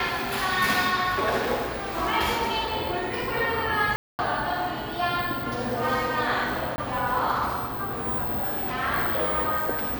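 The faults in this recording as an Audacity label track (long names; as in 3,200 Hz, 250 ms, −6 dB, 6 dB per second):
3.960000	4.190000	drop-out 229 ms
6.760000	6.780000	drop-out 20 ms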